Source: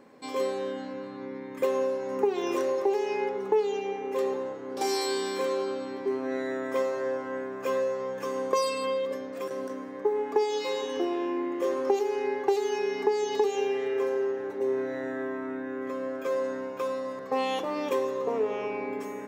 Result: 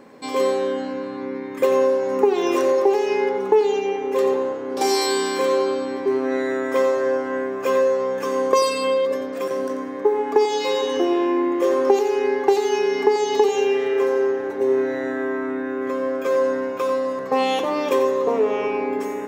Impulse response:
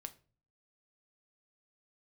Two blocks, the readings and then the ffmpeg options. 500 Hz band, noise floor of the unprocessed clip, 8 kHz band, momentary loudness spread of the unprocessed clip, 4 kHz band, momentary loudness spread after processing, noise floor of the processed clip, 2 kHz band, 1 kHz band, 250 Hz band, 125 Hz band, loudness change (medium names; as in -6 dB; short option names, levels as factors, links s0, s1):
+8.5 dB, -39 dBFS, +8.5 dB, 8 LU, +8.5 dB, 7 LU, -30 dBFS, +8.5 dB, +8.5 dB, +9.0 dB, no reading, +8.5 dB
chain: -filter_complex "[0:a]asplit=2[s0][s1];[1:a]atrim=start_sample=2205,adelay=89[s2];[s1][s2]afir=irnorm=-1:irlink=0,volume=0.473[s3];[s0][s3]amix=inputs=2:normalize=0,volume=2.51"